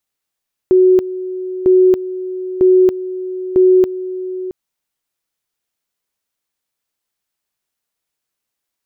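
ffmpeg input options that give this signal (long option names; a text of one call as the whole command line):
ffmpeg -f lavfi -i "aevalsrc='pow(10,(-6-14.5*gte(mod(t,0.95),0.28))/20)*sin(2*PI*370*t)':duration=3.8:sample_rate=44100" out.wav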